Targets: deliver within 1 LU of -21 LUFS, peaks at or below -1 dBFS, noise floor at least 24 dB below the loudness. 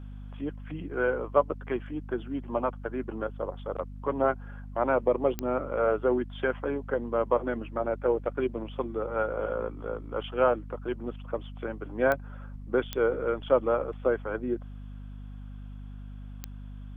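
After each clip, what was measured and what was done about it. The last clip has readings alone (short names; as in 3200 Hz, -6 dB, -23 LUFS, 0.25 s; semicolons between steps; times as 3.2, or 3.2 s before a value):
clicks 4; hum 50 Hz; harmonics up to 250 Hz; hum level -39 dBFS; loudness -30.0 LUFS; peak -8.5 dBFS; loudness target -21.0 LUFS
-> de-click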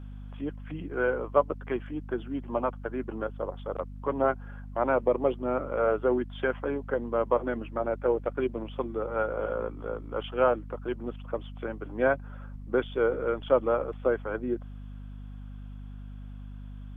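clicks 0; hum 50 Hz; harmonics up to 250 Hz; hum level -39 dBFS
-> notches 50/100/150/200/250 Hz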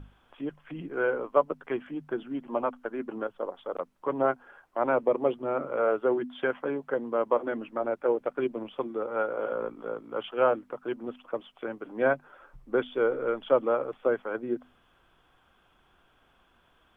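hum none; loudness -30.0 LUFS; peak -9.0 dBFS; loudness target -21.0 LUFS
-> gain +9 dB; limiter -1 dBFS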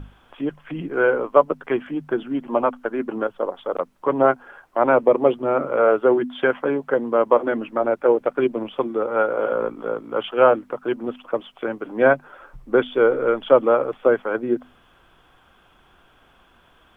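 loudness -21.0 LUFS; peak -1.0 dBFS; noise floor -56 dBFS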